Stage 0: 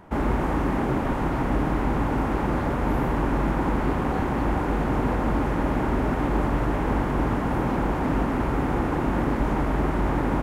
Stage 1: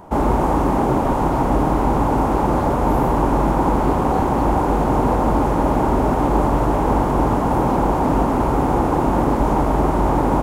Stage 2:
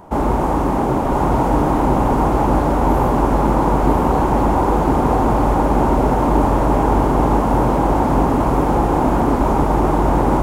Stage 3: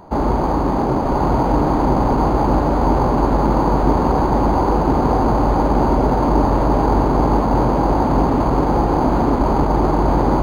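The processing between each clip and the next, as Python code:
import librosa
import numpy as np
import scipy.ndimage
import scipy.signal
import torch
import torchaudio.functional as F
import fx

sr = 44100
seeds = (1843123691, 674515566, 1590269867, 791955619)

y1 = fx.curve_eq(x, sr, hz=(230.0, 910.0, 1800.0, 7100.0), db=(0, 6, -7, 5))
y1 = F.gain(torch.from_numpy(y1), 5.0).numpy()
y2 = y1 + 10.0 ** (-3.0 / 20.0) * np.pad(y1, (int(1003 * sr / 1000.0), 0))[:len(y1)]
y3 = np.interp(np.arange(len(y2)), np.arange(len(y2))[::8], y2[::8])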